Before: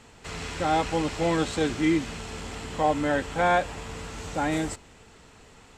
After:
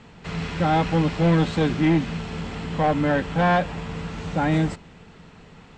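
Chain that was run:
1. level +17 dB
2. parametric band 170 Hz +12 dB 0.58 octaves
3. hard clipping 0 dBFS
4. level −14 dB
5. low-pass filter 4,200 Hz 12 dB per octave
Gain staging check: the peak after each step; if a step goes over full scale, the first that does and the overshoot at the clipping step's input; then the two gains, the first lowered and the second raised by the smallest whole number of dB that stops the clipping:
+5.5, +7.0, 0.0, −14.0, −13.5 dBFS
step 1, 7.0 dB
step 1 +10 dB, step 4 −7 dB

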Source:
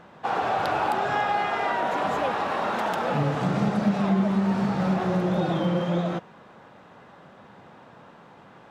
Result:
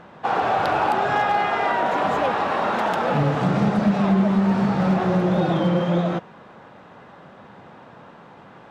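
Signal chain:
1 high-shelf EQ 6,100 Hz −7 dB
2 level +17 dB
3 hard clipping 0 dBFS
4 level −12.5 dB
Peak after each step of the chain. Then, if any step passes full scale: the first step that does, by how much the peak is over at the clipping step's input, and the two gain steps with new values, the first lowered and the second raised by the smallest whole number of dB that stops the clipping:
−12.5, +4.5, 0.0, −12.5 dBFS
step 2, 4.5 dB
step 2 +12 dB, step 4 −7.5 dB

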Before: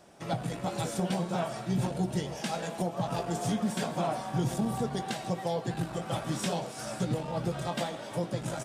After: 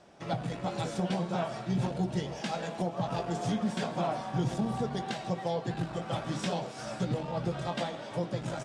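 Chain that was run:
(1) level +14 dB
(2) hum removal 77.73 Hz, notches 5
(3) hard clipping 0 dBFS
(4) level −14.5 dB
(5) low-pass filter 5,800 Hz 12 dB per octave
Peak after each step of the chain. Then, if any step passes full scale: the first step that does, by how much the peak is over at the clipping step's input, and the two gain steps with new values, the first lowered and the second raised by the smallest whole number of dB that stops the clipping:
−6.0, −5.5, −5.5, −20.0, −20.0 dBFS
no step passes full scale

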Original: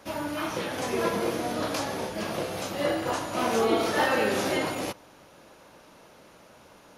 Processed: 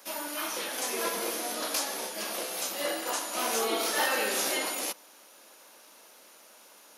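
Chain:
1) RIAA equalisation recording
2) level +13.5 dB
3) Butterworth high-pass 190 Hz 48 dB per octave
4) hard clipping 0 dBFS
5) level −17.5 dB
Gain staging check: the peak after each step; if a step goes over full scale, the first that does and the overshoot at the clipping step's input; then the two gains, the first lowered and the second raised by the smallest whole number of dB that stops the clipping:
−9.5, +4.0, +3.0, 0.0, −17.5 dBFS
step 2, 3.0 dB
step 2 +10.5 dB, step 5 −14.5 dB

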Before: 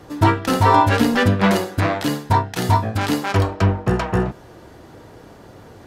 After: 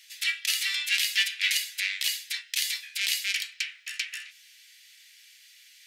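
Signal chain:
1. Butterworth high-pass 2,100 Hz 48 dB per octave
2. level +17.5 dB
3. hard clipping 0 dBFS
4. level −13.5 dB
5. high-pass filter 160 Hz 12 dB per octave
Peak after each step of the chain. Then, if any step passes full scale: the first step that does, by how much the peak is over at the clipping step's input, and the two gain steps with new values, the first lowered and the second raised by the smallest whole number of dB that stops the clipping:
−12.0, +5.5, 0.0, −13.5, −13.0 dBFS
step 2, 5.5 dB
step 2 +11.5 dB, step 4 −7.5 dB

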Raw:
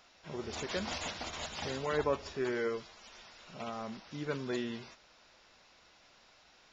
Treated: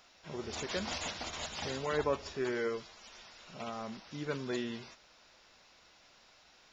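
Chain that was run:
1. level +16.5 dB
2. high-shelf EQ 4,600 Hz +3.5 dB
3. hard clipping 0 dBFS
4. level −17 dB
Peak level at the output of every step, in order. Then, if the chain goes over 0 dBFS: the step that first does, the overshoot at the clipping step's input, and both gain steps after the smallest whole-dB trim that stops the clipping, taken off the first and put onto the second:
−3.5, −3.5, −3.5, −20.5 dBFS
no step passes full scale

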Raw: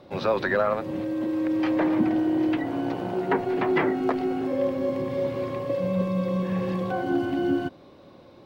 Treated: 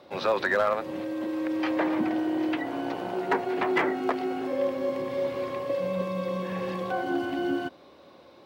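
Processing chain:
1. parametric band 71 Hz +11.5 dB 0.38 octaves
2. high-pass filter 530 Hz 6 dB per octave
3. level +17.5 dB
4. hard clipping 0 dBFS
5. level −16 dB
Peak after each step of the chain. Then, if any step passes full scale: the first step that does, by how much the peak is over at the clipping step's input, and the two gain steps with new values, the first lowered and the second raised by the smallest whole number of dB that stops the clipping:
−11.5, −13.5, +4.0, 0.0, −16.0 dBFS
step 3, 4.0 dB
step 3 +13.5 dB, step 5 −12 dB

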